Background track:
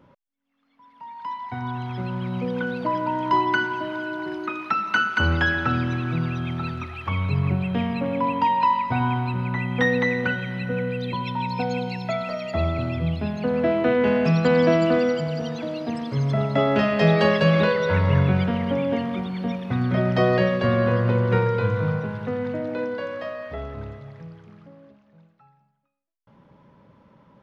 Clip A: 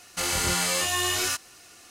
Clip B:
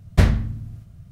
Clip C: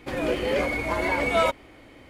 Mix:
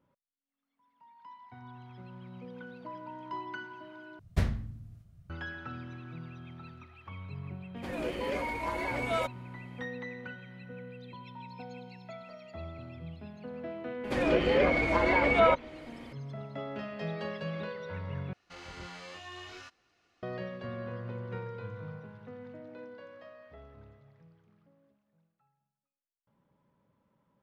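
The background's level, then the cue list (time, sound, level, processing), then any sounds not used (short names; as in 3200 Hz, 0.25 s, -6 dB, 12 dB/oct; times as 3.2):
background track -19 dB
4.19 replace with B -13 dB
7.76 add C -9.5 dB
14.04 add C -0.5 dB + treble ducked by the level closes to 2200 Hz, closed at -18.5 dBFS
18.33 replace with A -16 dB + air absorption 210 m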